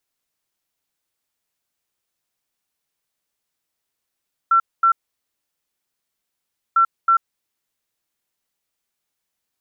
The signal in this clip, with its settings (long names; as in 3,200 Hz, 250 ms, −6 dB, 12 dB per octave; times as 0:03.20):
beeps in groups sine 1,350 Hz, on 0.09 s, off 0.23 s, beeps 2, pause 1.84 s, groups 2, −11 dBFS